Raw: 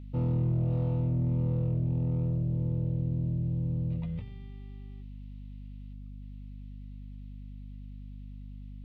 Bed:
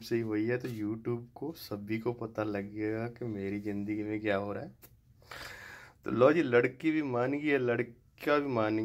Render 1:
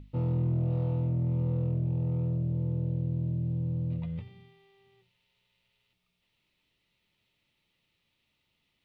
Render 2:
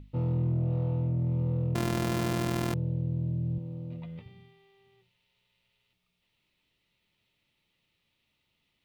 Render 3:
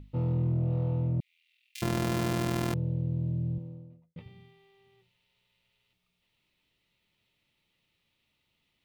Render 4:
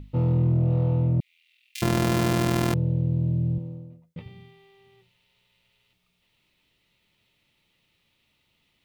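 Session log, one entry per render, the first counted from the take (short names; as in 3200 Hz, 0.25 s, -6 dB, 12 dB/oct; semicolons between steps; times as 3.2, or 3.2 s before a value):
notches 50/100/150/200/250/300 Hz
0.52–1.18 air absorption 72 m; 1.75–2.74 sample sorter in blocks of 128 samples; 3.58–4.26 Bessel high-pass 230 Hz
1.2–1.82 steep high-pass 2200 Hz 48 dB/oct; 3.37–4.16 studio fade out
gain +6.5 dB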